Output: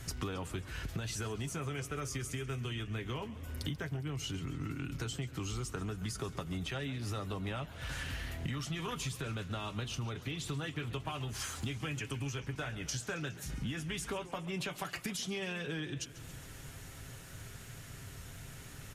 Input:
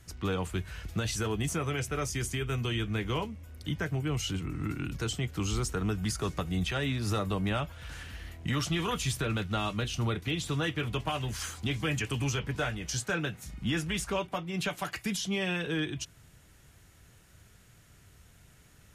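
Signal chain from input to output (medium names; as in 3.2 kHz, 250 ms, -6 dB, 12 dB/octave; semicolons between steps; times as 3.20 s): comb 7.5 ms, depth 36%; compression 10:1, threshold -45 dBFS, peak gain reduction 20.5 dB; modulated delay 137 ms, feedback 68%, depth 166 cents, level -16.5 dB; trim +9 dB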